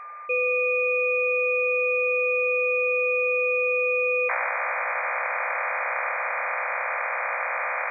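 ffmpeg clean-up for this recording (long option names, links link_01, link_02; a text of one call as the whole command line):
ffmpeg -i in.wav -af "bandreject=frequency=1200:width=30" out.wav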